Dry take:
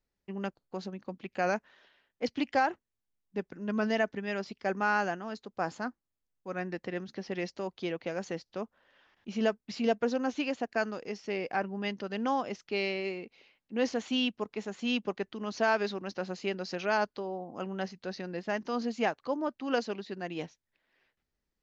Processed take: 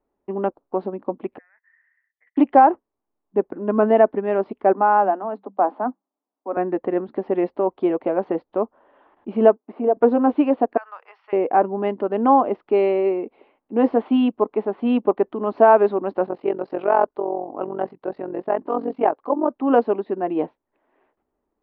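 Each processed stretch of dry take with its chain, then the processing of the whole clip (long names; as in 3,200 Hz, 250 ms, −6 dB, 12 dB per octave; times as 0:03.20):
0:01.38–0:02.37: compressor whose output falls as the input rises −37 dBFS + flat-topped band-pass 1,900 Hz, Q 6.4 + high-frequency loss of the air 250 metres
0:04.73–0:06.57: Chebyshev high-pass with heavy ripple 190 Hz, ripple 6 dB + parametric band 5,700 Hz −9 dB 0.29 octaves
0:09.56–0:09.97: downward compressor 5 to 1, threshold −27 dBFS + band-pass filter 400–2,100 Hz + tilt shelving filter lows +5 dB, about 740 Hz
0:10.77–0:11.33: high-pass filter 1,100 Hz 24 dB per octave + downward compressor, threshold −40 dBFS
0:16.26–0:19.50: amplitude modulation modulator 45 Hz, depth 70% + parametric band 220 Hz −7 dB 0.41 octaves
whole clip: Bessel low-pass filter 1,900 Hz, order 8; flat-topped bell 540 Hz +14.5 dB 2.6 octaves; notch filter 510 Hz, Q 12; level +2 dB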